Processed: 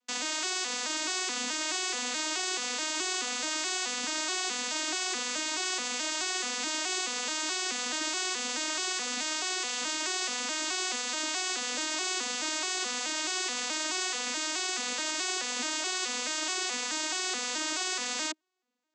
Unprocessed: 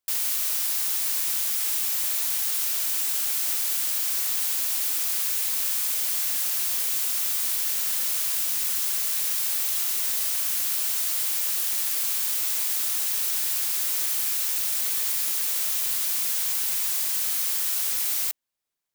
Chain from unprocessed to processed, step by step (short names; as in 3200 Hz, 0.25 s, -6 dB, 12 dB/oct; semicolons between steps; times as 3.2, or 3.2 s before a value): arpeggiated vocoder major triad, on B3, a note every 0.214 s; gain +2.5 dB